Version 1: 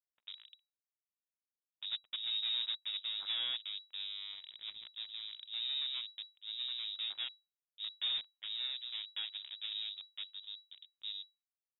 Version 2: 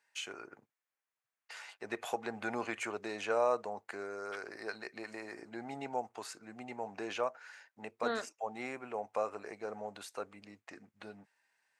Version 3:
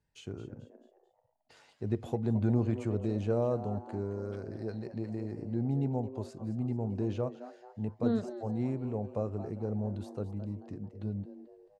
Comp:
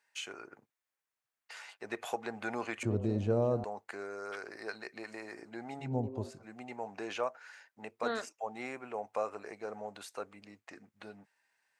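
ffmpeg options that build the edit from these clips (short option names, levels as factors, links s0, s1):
-filter_complex "[2:a]asplit=2[s0][s1];[1:a]asplit=3[s2][s3][s4];[s2]atrim=end=2.832[s5];[s0]atrim=start=2.828:end=3.642[s6];[s3]atrim=start=3.638:end=5.95[s7];[s1]atrim=start=5.79:end=6.45[s8];[s4]atrim=start=6.29[s9];[s5][s6]acrossfade=d=0.004:c1=hsin:c2=hsin[s10];[s10][s7]acrossfade=d=0.004:c1=hsin:c2=hsin[s11];[s11][s8]acrossfade=d=0.16:c1=tri:c2=tri[s12];[s12][s9]acrossfade=d=0.16:c1=tri:c2=tri"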